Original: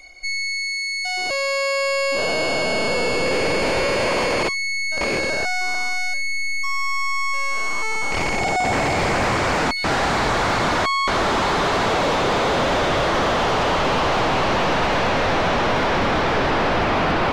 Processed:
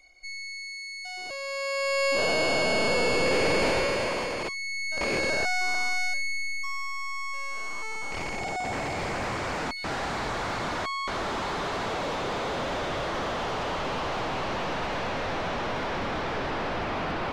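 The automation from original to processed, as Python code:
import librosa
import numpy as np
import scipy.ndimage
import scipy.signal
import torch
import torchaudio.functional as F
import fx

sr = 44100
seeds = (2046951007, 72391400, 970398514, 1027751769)

y = fx.gain(x, sr, db=fx.line((1.39, -13.0), (2.06, -3.5), (3.64, -3.5), (4.38, -11.5), (5.29, -4.0), (6.04, -4.0), (6.93, -11.0)))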